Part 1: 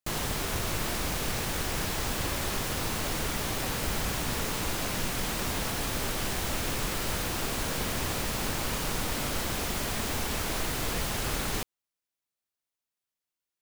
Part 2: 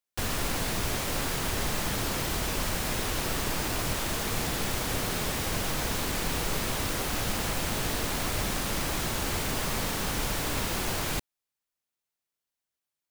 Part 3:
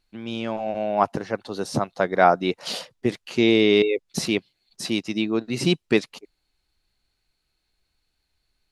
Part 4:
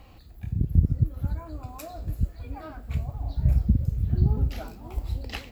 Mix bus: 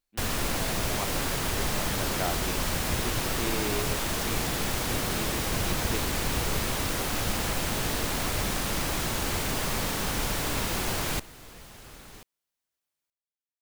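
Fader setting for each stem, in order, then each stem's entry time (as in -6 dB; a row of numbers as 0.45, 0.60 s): -16.5, +1.0, -16.5, -14.5 dB; 0.60, 0.00, 0.00, 2.15 s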